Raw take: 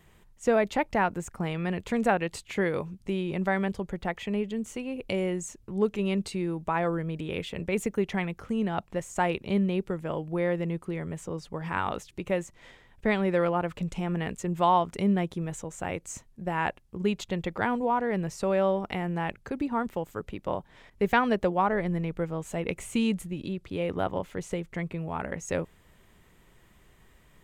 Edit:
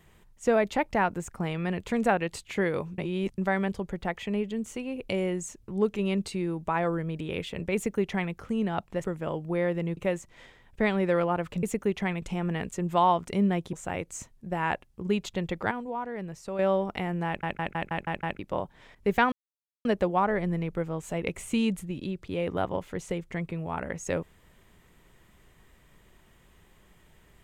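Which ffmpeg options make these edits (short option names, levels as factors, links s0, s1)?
-filter_complex "[0:a]asplit=18[s0][s1][s2][s3][s4][s5][s6][s7][s8][s9][s10][s11][s12][s13][s14][s15][s16][s17];[s0]atrim=end=2.982[s18];[s1]atrim=start=2.978:end=3.382,asetpts=PTS-STARTPTS,areverse[s19];[s2]atrim=start=3.378:end=9.042[s20];[s3]atrim=start=9.868:end=10.802[s21];[s4]atrim=start=12.218:end=13.882[s22];[s5]atrim=start=7.748:end=8.342[s23];[s6]atrim=start=13.878:end=15.392[s24];[s7]atrim=start=15.678:end=17.662[s25];[s8]atrim=start=17.658:end=18.542,asetpts=PTS-STARTPTS,volume=0.422[s26];[s9]atrim=start=18.538:end=19.382[s27];[s10]atrim=start=19.218:end=19.382[s28];[s11]atrim=start=19.218:end=19.382[s29];[s12]atrim=start=19.218:end=19.382[s30];[s13]atrim=start=19.218:end=19.382[s31];[s14]atrim=start=19.218:end=19.382[s32];[s15]atrim=start=19.218:end=19.382[s33];[s16]atrim=start=20.338:end=21.27,asetpts=PTS-STARTPTS,afade=t=out:st=0.928:d=0.004:c=hsin,apad=pad_dur=0.53[s34];[s17]atrim=start=21.27,asetpts=PTS-STARTPTS,afade=t=in:d=0.004:c=hsin[s35];[s18][s19]acrossfade=d=0.004:c1=hsin:c2=hsin[s36];[s36][s20]acrossfade=d=0.004:c1=hsin:c2=hsin[s37];[s37][s21]acrossfade=d=0.004:c1=hsin:c2=hsin[s38];[s38][s22]acrossfade=d=0.004:c1=hsin:c2=hsin[s39];[s39][s23]acrossfade=d=0.004:c1=hsin:c2=hsin[s40];[s40][s24]acrossfade=d=0.004:c1=hsin:c2=hsin[s41];[s41][s25]acrossfade=d=0.004:c1=hsin:c2=hsin[s42];[s42][s26]acrossfade=d=0.004:c1=hsin:c2=hsin[s43];[s43][s27]acrossfade=d=0.004:c1=hsin:c2=hsin[s44];[s44][s28]acrossfade=d=0.004:c1=hsin:c2=hsin[s45];[s45][s29]acrossfade=d=0.004:c1=hsin:c2=hsin[s46];[s46][s30]acrossfade=d=0.004:c1=hsin:c2=hsin[s47];[s47][s31]acrossfade=d=0.004:c1=hsin:c2=hsin[s48];[s48][s32]acrossfade=d=0.004:c1=hsin:c2=hsin[s49];[s49][s33]acrossfade=d=0.004:c1=hsin:c2=hsin[s50];[s34][s35]concat=n=2:v=0:a=1[s51];[s50][s51]acrossfade=d=0.004:c1=hsin:c2=hsin"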